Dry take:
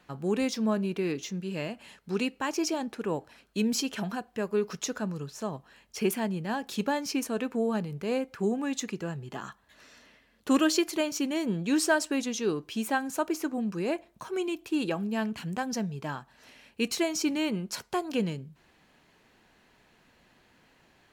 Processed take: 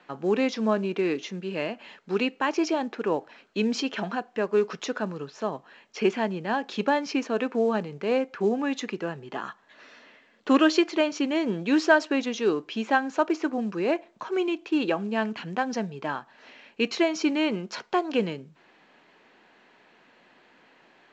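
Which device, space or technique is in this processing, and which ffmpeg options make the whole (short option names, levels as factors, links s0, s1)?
telephone: -af "highpass=270,lowpass=3400,volume=2" -ar 16000 -c:a pcm_mulaw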